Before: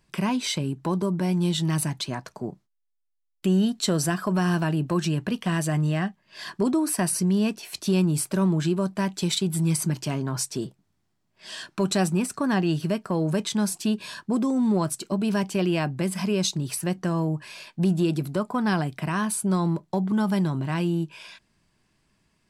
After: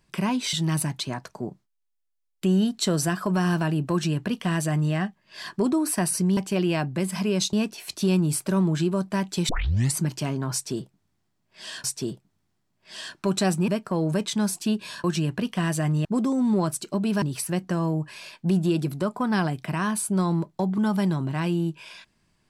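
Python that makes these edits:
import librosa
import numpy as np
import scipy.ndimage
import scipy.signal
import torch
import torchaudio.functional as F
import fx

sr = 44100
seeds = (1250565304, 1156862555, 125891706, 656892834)

y = fx.edit(x, sr, fx.cut(start_s=0.53, length_s=1.01),
    fx.duplicate(start_s=4.93, length_s=1.01, to_s=14.23),
    fx.tape_start(start_s=9.34, length_s=0.45),
    fx.repeat(start_s=10.38, length_s=1.31, count=2),
    fx.cut(start_s=12.22, length_s=0.65),
    fx.move(start_s=15.4, length_s=1.16, to_s=7.38), tone=tone)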